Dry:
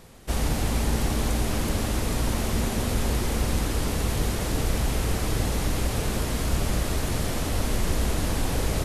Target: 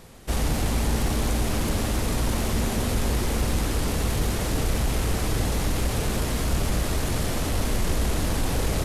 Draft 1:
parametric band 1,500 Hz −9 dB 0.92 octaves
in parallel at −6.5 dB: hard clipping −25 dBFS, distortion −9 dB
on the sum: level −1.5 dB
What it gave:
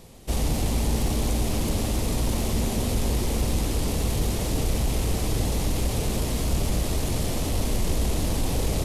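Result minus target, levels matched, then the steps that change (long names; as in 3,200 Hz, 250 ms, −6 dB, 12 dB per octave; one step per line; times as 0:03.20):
2,000 Hz band −4.5 dB
remove: parametric band 1,500 Hz −9 dB 0.92 octaves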